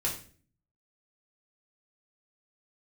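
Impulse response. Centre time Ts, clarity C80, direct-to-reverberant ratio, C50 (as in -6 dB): 24 ms, 12.0 dB, -4.5 dB, 7.5 dB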